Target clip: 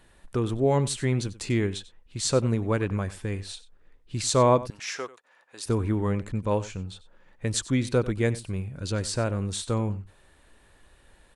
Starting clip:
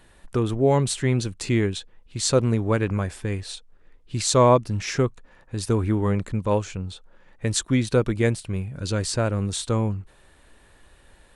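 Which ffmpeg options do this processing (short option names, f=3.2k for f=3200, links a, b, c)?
-filter_complex "[0:a]asettb=1/sr,asplit=3[a][b][c];[a]atrim=end=4.704[d];[b]atrim=start=4.7:end=5.66,asetpts=PTS-STARTPTS,afade=t=in:d=0.004:c=qsin,afade=t=out:st=0.956:d=0.004:c=qsin,highpass=680[e];[c]atrim=start=5.656[f];[d][e]acrossfade=d=0.004:c1=hsin:c2=qsin[g];[g][f]acrossfade=d=0.004:c1=qsin:c2=hsin,aecho=1:1:93:0.133,volume=-3.5dB"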